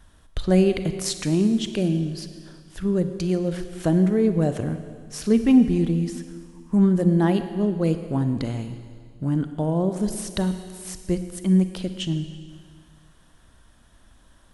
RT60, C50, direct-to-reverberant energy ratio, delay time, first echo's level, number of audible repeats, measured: 1.9 s, 9.5 dB, 9.0 dB, no echo, no echo, no echo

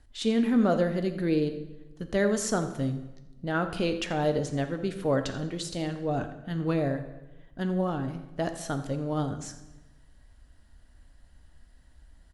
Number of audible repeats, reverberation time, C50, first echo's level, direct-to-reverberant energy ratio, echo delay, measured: 1, 1.1 s, 9.5 dB, -15.5 dB, 7.5 dB, 85 ms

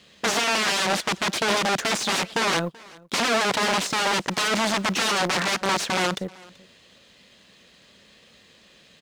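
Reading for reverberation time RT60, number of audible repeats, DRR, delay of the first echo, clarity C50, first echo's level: no reverb, 1, no reverb, 383 ms, no reverb, -23.5 dB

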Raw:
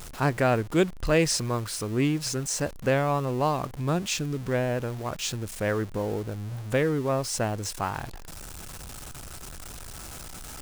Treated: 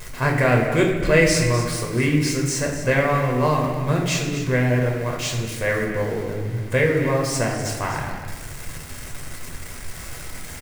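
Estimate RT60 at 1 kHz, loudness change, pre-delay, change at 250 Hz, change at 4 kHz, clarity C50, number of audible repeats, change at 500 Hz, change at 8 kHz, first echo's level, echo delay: 1.1 s, +6.0 dB, 8 ms, +5.5 dB, +4.0 dB, 3.5 dB, 1, +6.0 dB, +4.0 dB, -11.5 dB, 251 ms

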